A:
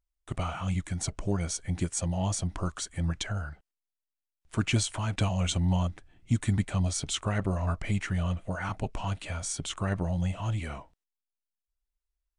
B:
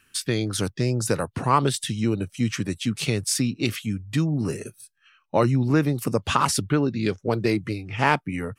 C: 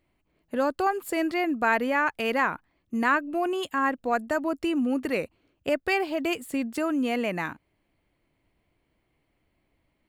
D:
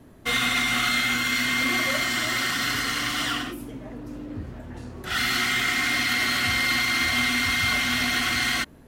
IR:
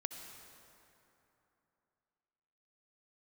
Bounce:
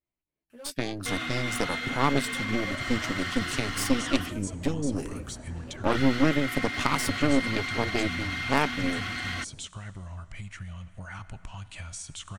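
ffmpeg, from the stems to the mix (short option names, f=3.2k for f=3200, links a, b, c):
-filter_complex "[0:a]equalizer=f=420:w=0.67:g=-12.5,acompressor=threshold=-40dB:ratio=10,adelay=2500,volume=0.5dB,asplit=2[a][b];[b]volume=-5.5dB[c];[1:a]equalizer=f=270:t=o:w=0.23:g=11,aeval=exprs='0.708*(cos(1*acos(clip(val(0)/0.708,-1,1)))-cos(1*PI/2))+0.0891*(cos(3*acos(clip(val(0)/0.708,-1,1)))-cos(3*PI/2))+0.1*(cos(6*acos(clip(val(0)/0.708,-1,1)))-cos(6*PI/2))':c=same,adelay=500,volume=-4.5dB[d];[2:a]asoftclip=type=hard:threshold=-21dB,asplit=2[e][f];[f]adelay=11.4,afreqshift=-2.9[g];[e][g]amix=inputs=2:normalize=1,volume=-17.5dB[h];[3:a]aemphasis=mode=reproduction:type=50fm,alimiter=limit=-19dB:level=0:latency=1:release=87,adelay=800,volume=-5dB[i];[4:a]atrim=start_sample=2205[j];[c][j]afir=irnorm=-1:irlink=0[k];[a][d][h][i][k]amix=inputs=5:normalize=0"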